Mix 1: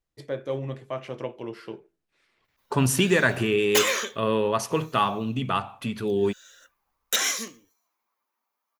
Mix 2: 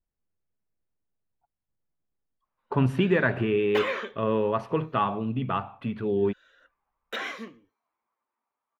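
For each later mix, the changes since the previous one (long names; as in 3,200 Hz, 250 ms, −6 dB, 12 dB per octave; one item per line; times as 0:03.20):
first voice: muted
master: add high-frequency loss of the air 490 metres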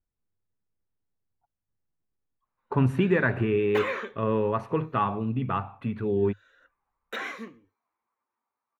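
master: add thirty-one-band graphic EQ 100 Hz +6 dB, 630 Hz −4 dB, 3,150 Hz −7 dB, 5,000 Hz −7 dB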